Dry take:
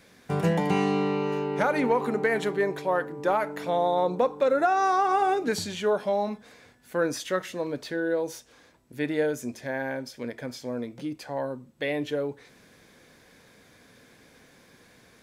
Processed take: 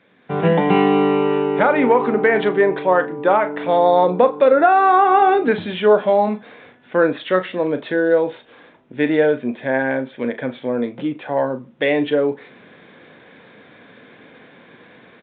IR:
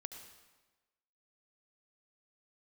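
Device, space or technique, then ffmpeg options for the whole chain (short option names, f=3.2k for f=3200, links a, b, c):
Bluetooth headset: -filter_complex "[0:a]highpass=160,highshelf=f=4.3k:g=-6,asplit=2[a][b];[b]adelay=38,volume=-11.5dB[c];[a][c]amix=inputs=2:normalize=0,dynaudnorm=f=230:g=3:m=11.5dB,aresample=8000,aresample=44100" -ar 16000 -c:a sbc -b:a 64k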